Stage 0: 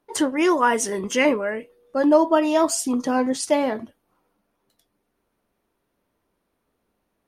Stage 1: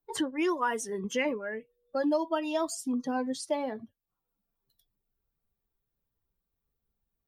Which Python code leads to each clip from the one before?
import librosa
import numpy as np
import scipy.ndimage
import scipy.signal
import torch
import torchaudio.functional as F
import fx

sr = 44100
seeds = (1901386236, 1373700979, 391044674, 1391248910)

y = fx.bin_expand(x, sr, power=1.5)
y = fx.band_squash(y, sr, depth_pct=70)
y = F.gain(torch.from_numpy(y), -8.5).numpy()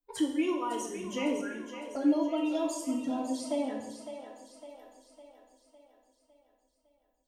y = fx.env_flanger(x, sr, rest_ms=4.0, full_db=-27.0)
y = fx.echo_split(y, sr, split_hz=360.0, low_ms=166, high_ms=556, feedback_pct=52, wet_db=-9.5)
y = fx.rev_double_slope(y, sr, seeds[0], early_s=0.76, late_s=2.9, knee_db=-27, drr_db=0.0)
y = F.gain(torch.from_numpy(y), -3.5).numpy()